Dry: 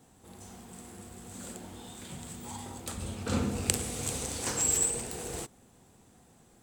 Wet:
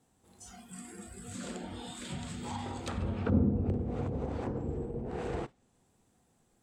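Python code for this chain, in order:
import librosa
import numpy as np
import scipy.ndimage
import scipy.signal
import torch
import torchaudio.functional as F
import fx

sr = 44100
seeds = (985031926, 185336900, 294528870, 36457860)

y = fx.noise_reduce_blind(x, sr, reduce_db=15)
y = fx.env_lowpass_down(y, sr, base_hz=410.0, full_db=-29.5)
y = y * librosa.db_to_amplitude(4.5)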